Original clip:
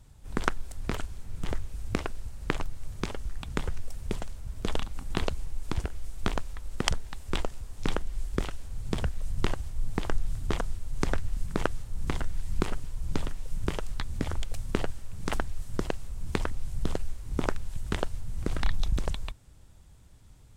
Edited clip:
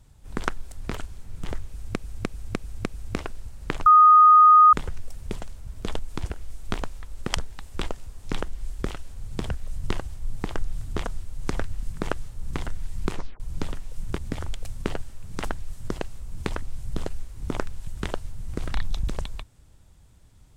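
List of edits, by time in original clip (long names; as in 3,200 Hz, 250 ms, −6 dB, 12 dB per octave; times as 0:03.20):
0:01.66–0:01.96: repeat, 5 plays
0:02.66–0:03.53: beep over 1,240 Hz −9.5 dBFS
0:04.79–0:05.53: remove
0:12.67: tape stop 0.27 s
0:13.72–0:14.07: remove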